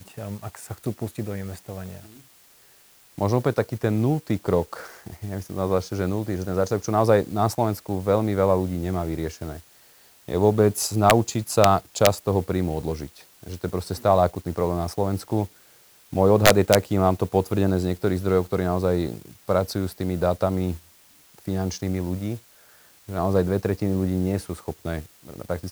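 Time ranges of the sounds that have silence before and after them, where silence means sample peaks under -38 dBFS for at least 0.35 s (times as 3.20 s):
3.18–9.60 s
10.28–15.47 s
16.13–20.78 s
21.38–22.39 s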